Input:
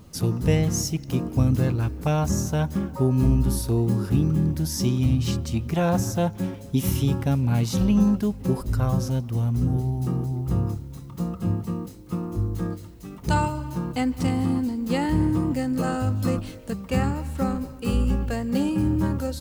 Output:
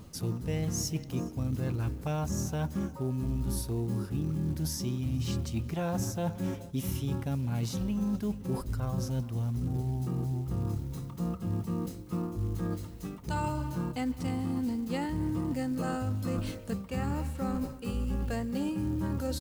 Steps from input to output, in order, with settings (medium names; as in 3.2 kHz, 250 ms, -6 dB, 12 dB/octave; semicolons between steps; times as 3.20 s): delay 427 ms -22.5 dB; short-mantissa float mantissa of 4-bit; reverse; compression 6:1, threshold -29 dBFS, peak gain reduction 14 dB; reverse